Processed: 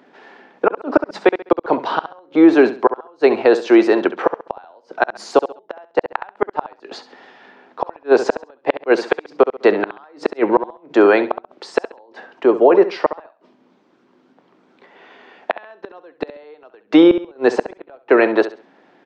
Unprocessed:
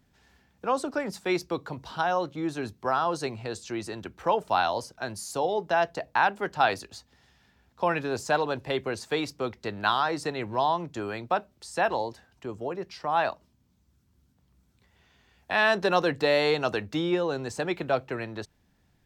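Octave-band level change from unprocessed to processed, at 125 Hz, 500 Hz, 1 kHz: no reading, +12.5 dB, +4.0 dB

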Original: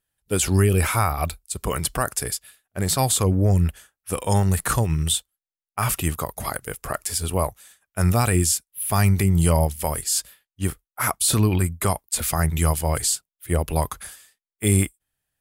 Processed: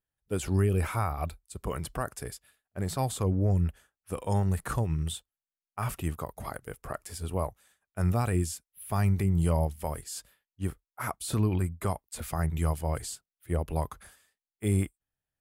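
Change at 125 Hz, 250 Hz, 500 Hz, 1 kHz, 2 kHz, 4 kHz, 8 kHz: -7.0 dB, -7.0 dB, -7.5 dB, -9.0 dB, -11.5 dB, -15.0 dB, -17.0 dB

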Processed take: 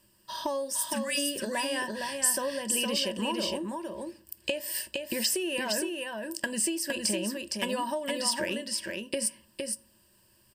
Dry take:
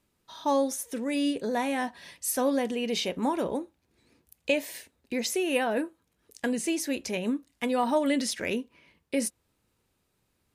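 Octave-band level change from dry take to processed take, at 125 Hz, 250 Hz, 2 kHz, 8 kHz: 0.0 dB, -5.5 dB, +1.0 dB, +6.0 dB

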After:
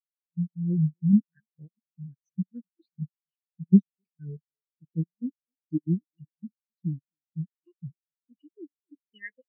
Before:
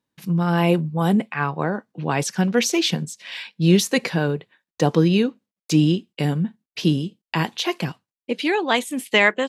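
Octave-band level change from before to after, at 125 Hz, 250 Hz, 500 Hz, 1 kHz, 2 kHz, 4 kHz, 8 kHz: -7.5 dB, -6.5 dB, -24.0 dB, under -40 dB, under -25 dB, under -40 dB, under -40 dB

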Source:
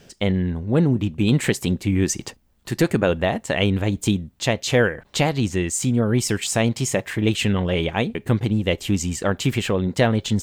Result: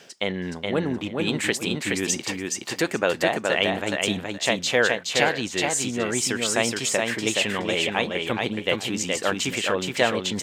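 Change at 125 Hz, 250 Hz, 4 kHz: -13.0 dB, -7.0 dB, +3.0 dB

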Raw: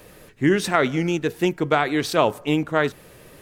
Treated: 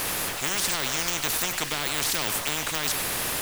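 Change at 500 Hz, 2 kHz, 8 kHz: -14.0 dB, -2.5 dB, +12.5 dB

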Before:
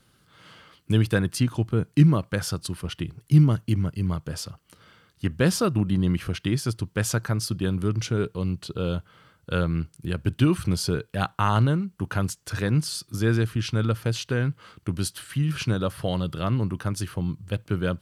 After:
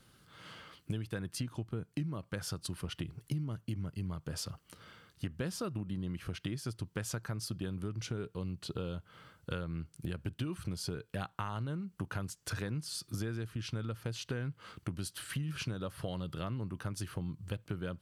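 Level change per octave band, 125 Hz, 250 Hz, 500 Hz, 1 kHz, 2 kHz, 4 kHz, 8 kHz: -14.5 dB, -14.5 dB, -14.0 dB, -14.5 dB, -12.5 dB, -10.5 dB, -10.5 dB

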